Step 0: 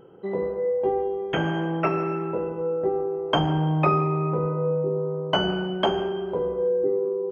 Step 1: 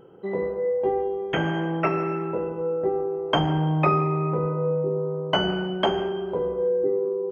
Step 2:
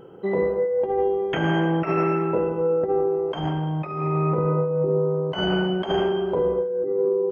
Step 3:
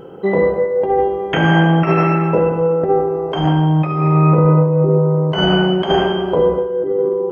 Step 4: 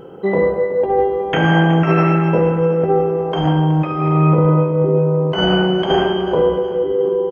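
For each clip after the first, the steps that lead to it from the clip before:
dynamic EQ 2000 Hz, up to +5 dB, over -49 dBFS, Q 4.6
negative-ratio compressor -25 dBFS, ratio -0.5; gain +3.5 dB
two-slope reverb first 0.84 s, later 2.7 s, DRR 7 dB; gain +8.5 dB
feedback echo 0.37 s, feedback 47%, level -13 dB; gain -1 dB

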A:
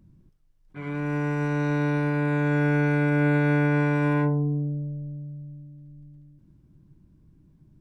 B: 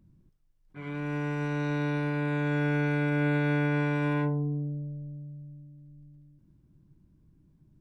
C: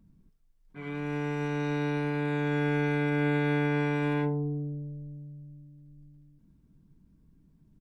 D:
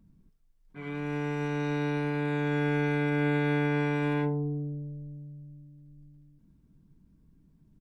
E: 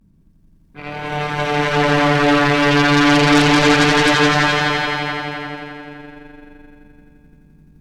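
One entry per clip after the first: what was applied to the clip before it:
dynamic EQ 3300 Hz, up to +7 dB, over -53 dBFS, Q 1.8; gain -5 dB
comb 4.4 ms, depth 45%
nothing audible
vibrato 0.32 Hz 32 cents; swelling echo 86 ms, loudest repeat 5, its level -4.5 dB; added harmonics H 8 -7 dB, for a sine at -12 dBFS; gain +6.5 dB

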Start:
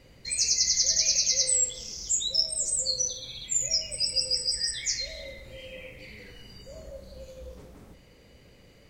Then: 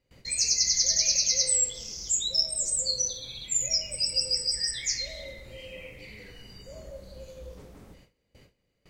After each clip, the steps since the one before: gate with hold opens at -44 dBFS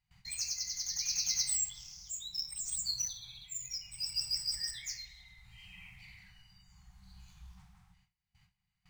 median filter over 3 samples; tremolo 0.68 Hz, depth 56%; FFT band-reject 200–720 Hz; gain -6.5 dB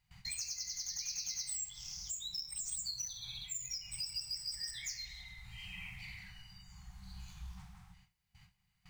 compressor 5:1, threshold -45 dBFS, peak gain reduction 15.5 dB; gain +6 dB

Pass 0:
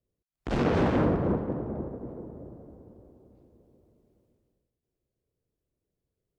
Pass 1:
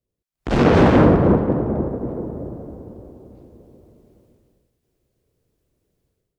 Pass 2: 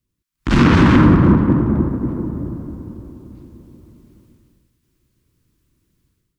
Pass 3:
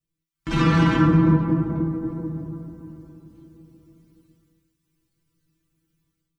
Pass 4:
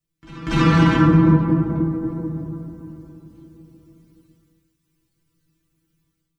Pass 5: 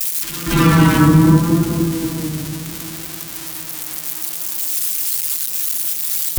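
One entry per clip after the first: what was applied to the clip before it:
AGC gain up to 13.5 dB
band shelf 570 Hz -14.5 dB 1.2 oct; limiter -9.5 dBFS, peak gain reduction 5 dB; gain +7 dB
metallic resonator 160 Hz, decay 0.27 s, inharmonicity 0.002; gain +5 dB
pre-echo 0.239 s -20 dB; gain +3 dB
switching spikes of -15 dBFS; vibrato 0.72 Hz 52 cents; gain +3 dB

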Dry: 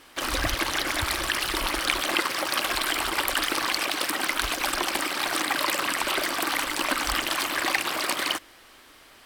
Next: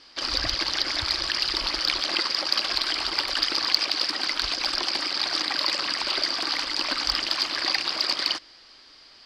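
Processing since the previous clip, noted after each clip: synth low-pass 4800 Hz, resonance Q 8.9; in parallel at -9 dB: hard clip -9 dBFS, distortion -14 dB; on the sum: gain -8 dB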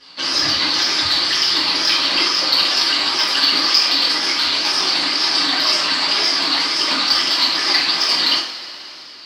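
HPF 120 Hz 24 dB/oct; wow and flutter 130 cents; two-slope reverb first 0.45 s, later 3.3 s, from -18 dB, DRR -10 dB; gain -2 dB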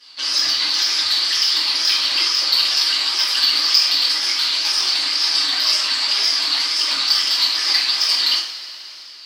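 tilt +3.5 dB/oct; gain -8 dB

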